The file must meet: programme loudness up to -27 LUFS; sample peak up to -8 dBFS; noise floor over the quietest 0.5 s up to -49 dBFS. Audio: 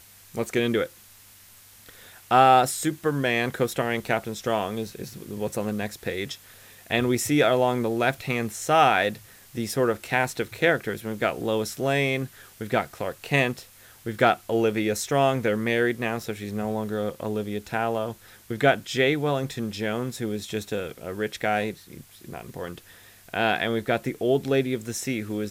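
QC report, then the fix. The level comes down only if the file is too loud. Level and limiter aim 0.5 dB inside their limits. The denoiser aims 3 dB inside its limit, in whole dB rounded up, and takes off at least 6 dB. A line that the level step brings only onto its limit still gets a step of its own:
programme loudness -25.0 LUFS: fail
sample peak -5.5 dBFS: fail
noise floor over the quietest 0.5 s -51 dBFS: OK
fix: gain -2.5 dB; limiter -8.5 dBFS

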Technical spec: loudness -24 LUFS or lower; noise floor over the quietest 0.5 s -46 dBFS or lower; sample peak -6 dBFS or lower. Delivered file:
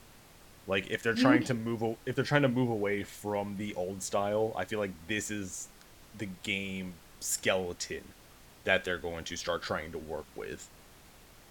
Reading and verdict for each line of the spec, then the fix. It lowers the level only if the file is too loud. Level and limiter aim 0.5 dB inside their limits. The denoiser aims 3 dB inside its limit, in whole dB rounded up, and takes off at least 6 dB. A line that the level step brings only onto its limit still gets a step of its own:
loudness -32.5 LUFS: OK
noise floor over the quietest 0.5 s -56 dBFS: OK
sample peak -10.0 dBFS: OK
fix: none

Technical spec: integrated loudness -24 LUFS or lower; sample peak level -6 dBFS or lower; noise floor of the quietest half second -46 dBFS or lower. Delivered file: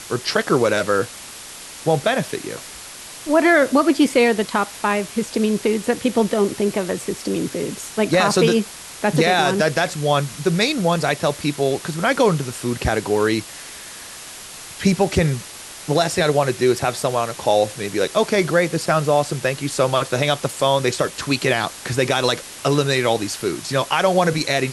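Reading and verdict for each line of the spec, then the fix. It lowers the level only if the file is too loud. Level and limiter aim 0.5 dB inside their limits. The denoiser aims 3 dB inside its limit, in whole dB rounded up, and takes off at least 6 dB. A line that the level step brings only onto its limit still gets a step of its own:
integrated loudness -19.5 LUFS: fail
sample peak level -5.0 dBFS: fail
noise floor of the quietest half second -37 dBFS: fail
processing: denoiser 7 dB, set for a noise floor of -37 dBFS; gain -5 dB

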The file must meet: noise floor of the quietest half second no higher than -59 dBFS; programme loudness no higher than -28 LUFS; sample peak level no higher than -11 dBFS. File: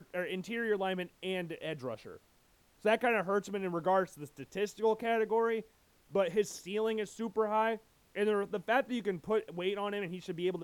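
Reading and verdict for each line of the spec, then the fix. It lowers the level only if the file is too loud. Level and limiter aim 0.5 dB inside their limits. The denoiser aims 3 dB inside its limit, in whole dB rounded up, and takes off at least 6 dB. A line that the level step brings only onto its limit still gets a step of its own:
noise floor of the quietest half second -67 dBFS: OK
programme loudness -34.0 LUFS: OK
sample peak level -17.5 dBFS: OK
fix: none

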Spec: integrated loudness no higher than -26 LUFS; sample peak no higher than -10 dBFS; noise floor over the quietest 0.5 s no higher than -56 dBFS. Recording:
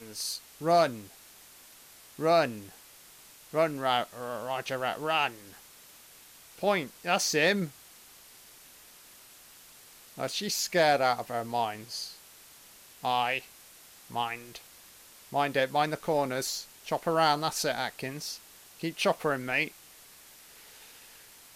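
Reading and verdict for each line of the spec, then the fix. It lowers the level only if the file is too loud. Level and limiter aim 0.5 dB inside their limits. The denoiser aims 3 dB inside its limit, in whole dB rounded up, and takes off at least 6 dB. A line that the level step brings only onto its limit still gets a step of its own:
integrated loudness -29.5 LUFS: OK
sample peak -13.5 dBFS: OK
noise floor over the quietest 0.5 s -54 dBFS: fail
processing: denoiser 6 dB, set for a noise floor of -54 dBFS

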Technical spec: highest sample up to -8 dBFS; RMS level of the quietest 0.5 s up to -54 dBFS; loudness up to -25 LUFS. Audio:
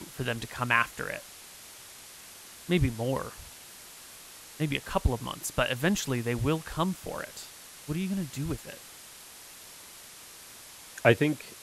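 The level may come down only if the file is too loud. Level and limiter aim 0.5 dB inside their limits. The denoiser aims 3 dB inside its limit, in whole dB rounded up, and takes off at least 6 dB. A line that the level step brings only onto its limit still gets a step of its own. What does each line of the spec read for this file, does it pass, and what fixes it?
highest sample -5.5 dBFS: fail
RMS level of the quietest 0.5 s -49 dBFS: fail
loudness -30.0 LUFS: OK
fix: denoiser 8 dB, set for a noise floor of -49 dBFS; limiter -8.5 dBFS

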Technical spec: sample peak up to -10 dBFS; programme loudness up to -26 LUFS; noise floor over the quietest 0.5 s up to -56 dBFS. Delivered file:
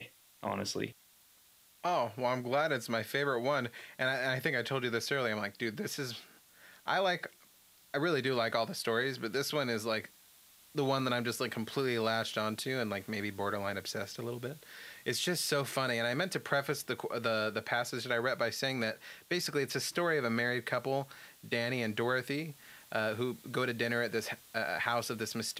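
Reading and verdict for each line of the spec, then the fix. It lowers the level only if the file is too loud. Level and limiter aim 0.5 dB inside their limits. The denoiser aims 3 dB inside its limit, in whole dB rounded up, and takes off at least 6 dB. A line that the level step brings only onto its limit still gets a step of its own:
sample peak -15.0 dBFS: OK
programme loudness -34.0 LUFS: OK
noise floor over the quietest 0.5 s -64 dBFS: OK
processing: none

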